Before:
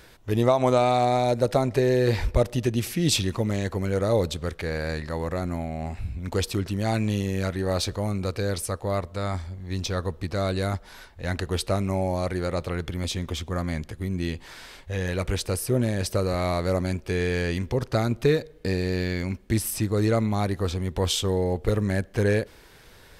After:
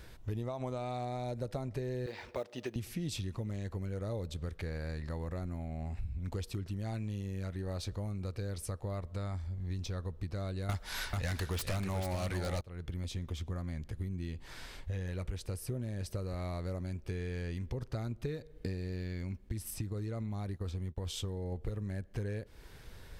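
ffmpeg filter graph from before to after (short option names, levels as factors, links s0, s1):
-filter_complex "[0:a]asettb=1/sr,asplit=3[s0][s1][s2];[s0]atrim=end=2.064[s3];[s1]atrim=start=2.06:end=2.76,asetpts=PTS-STARTPTS,afade=t=in:d=0.004:c=qsin,afade=t=out:st=0.696:d=0.004:c=qsin,highpass=400,lowpass=5200,acrusher=bits=7:mode=log:mix=0:aa=0.000001[s4];[s2]atrim=start=2.756[s5];[s3][s4]acrossfade=d=0.004:c1=hsin:c2=qsin[s6];[s6][s5]acrossfade=d=0.004:c1=qsin:c2=hsin,asettb=1/sr,asplit=3[s7][s8][s9];[s7]atrim=end=10.694[s10];[s8]atrim=start=10.69:end=12.61,asetpts=PTS-STARTPTS,afade=t=in:d=0.004:c=qsin,afade=t=out:st=1.916:d=0.004:c=qsin,tiltshelf=f=850:g=-6.5,aeval=exprs='0.531*sin(PI/2*7.94*val(0)/0.531)':c=same,aecho=1:1:440:0.447,atrim=end_sample=84672[s11];[s9]atrim=start=12.606[s12];[s10][s11]acrossfade=d=0.004:c1=hsin:c2=qsin[s13];[s13][s12]acrossfade=d=0.004:c1=qsin:c2=hsin,asettb=1/sr,asplit=3[s14][s15][s16];[s14]atrim=end=19.494[s17];[s15]atrim=start=19.49:end=21.52,asetpts=PTS-STARTPTS,afade=t=in:d=0.004:c=qsin,afade=t=out:st=2.026:d=0.004:c=qsin,agate=range=0.0224:threshold=0.0398:ratio=3:release=100:detection=peak,acompressor=threshold=0.0708:ratio=4:attack=3.2:release=140:knee=1:detection=peak[s18];[s16]atrim=start=21.516[s19];[s17][s18]acrossfade=d=0.004:c1=hsin:c2=qsin[s20];[s20][s19]acrossfade=d=0.004:c1=qsin:c2=hsin,lowshelf=f=160:g=11.5,acompressor=threshold=0.0355:ratio=6,volume=0.501"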